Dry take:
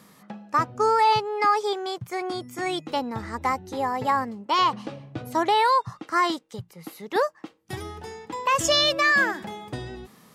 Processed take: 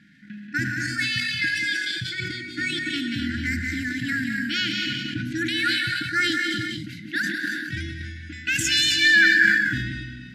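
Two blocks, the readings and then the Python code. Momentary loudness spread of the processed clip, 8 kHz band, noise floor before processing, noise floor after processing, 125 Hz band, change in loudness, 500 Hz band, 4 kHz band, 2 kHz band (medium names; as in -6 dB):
15 LU, +3.5 dB, -56 dBFS, -40 dBFS, +6.0 dB, +1.5 dB, -15.0 dB, +4.5 dB, +8.5 dB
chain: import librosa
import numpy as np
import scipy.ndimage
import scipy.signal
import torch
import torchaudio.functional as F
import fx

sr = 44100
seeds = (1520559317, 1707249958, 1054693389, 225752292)

p1 = fx.env_lowpass(x, sr, base_hz=2900.0, full_db=-19.5)
p2 = fx.brickwall_bandstop(p1, sr, low_hz=340.0, high_hz=1400.0)
p3 = p2 + fx.echo_single(p2, sr, ms=183, db=-5.5, dry=0)
p4 = fx.rev_gated(p3, sr, seeds[0], gate_ms=310, shape='rising', drr_db=4.0)
p5 = fx.level_steps(p4, sr, step_db=17)
p6 = p4 + (p5 * librosa.db_to_amplitude(0.5))
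p7 = fx.peak_eq(p6, sr, hz=1300.0, db=6.5, octaves=1.5)
p8 = fx.sustainer(p7, sr, db_per_s=31.0)
y = p8 * librosa.db_to_amplitude(-2.5)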